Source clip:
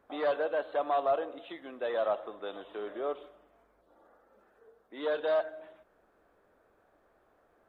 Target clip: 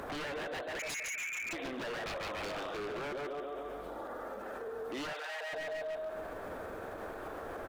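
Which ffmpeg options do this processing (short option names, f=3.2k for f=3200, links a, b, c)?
-filter_complex "[0:a]asplit=2[a][b];[b]aecho=0:1:139|278|417|556|695:0.422|0.194|0.0892|0.041|0.0189[c];[a][c]amix=inputs=2:normalize=0,acompressor=mode=upward:threshold=-36dB:ratio=2.5,asettb=1/sr,asplit=3[d][e][f];[d]atrim=end=0.794[g];[e]atrim=start=0.79:end=1.53,asetpts=PTS-STARTPTS,afade=t=in:d=0.004:c=qsin,afade=t=out:st=0.736:d=0.004:c=qsin,lowpass=f=2.5k:t=q:w=0.5098,lowpass=f=2.5k:t=q:w=0.6013,lowpass=f=2.5k:t=q:w=0.9,lowpass=f=2.5k:t=q:w=2.563,afreqshift=-2900[h];[f]atrim=start=1.526[i];[g][h]acrossfade=d=0.004:c1=hsin:c2=qsin[j];[j][i]acrossfade=d=0.004:c1=qsin:c2=hsin,acompressor=threshold=-34dB:ratio=10,asettb=1/sr,asplit=3[k][l][m];[k]atrim=end=2.064[n];[l]atrim=start=2.06:end=2.7,asetpts=PTS-STARTPTS,afade=t=in:d=0.004:c=qsin,afade=t=out:st=0.636:d=0.004:c=qsin,equalizer=f=1.2k:t=o:w=0.58:g=9[o];[m]atrim=start=2.696[p];[n][o]acrossfade=d=0.004:c1=hsin:c2=qsin[q];[q][p]acrossfade=d=0.004:c1=qsin:c2=hsin,asplit=2[r][s];[s]adelay=150,lowpass=f=1.6k:p=1,volume=-7dB,asplit=2[t][u];[u]adelay=150,lowpass=f=1.6k:p=1,volume=0.34,asplit=2[v][w];[w]adelay=150,lowpass=f=1.6k:p=1,volume=0.34,asplit=2[x][y];[y]adelay=150,lowpass=f=1.6k:p=1,volume=0.34[z];[t][v][x][z]amix=inputs=4:normalize=0[aa];[r][aa]amix=inputs=2:normalize=0,aeval=exprs='0.0126*(abs(mod(val(0)/0.0126+3,4)-2)-1)':c=same,asettb=1/sr,asplit=3[ab][ac][ad];[ab]atrim=end=5.134[ae];[ac]atrim=start=5.13:end=5.53,asetpts=PTS-STARTPTS,afade=t=in:d=0.004:c=qsin,afade=t=out:st=0.396:d=0.004:c=qsin,highpass=f=560:w=0.5412,highpass=f=560:w=1.3066[af];[ad]atrim=start=5.526[ag];[ae][af]acrossfade=d=0.004:c1=hsin:c2=qsin[ah];[ah][ag]acrossfade=d=0.004:c1=qsin:c2=hsin,alimiter=level_in=19dB:limit=-24dB:level=0:latency=1:release=45,volume=-19dB,volume=9dB"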